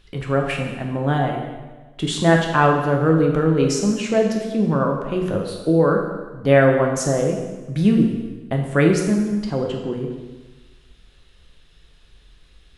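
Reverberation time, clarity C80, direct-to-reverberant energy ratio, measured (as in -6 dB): 1.3 s, 6.0 dB, 1.0 dB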